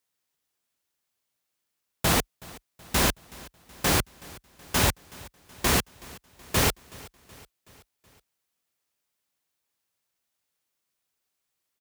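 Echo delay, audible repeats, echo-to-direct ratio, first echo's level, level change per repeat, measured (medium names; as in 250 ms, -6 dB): 374 ms, 3, -20.5 dB, -22.0 dB, -5.0 dB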